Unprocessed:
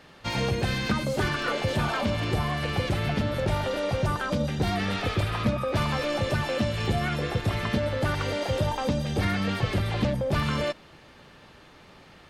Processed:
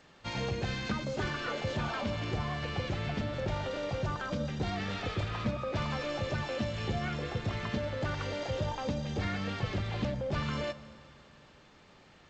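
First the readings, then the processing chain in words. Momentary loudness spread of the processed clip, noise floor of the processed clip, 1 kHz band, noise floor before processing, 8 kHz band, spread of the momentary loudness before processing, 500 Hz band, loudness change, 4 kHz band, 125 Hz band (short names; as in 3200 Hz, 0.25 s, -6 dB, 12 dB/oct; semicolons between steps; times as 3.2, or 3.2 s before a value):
1 LU, -59 dBFS, -7.5 dB, -52 dBFS, -9.0 dB, 2 LU, -7.0 dB, -7.5 dB, -7.5 dB, -7.5 dB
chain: Schroeder reverb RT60 3 s, combs from 32 ms, DRR 15 dB; gain -7.5 dB; G.722 64 kbps 16000 Hz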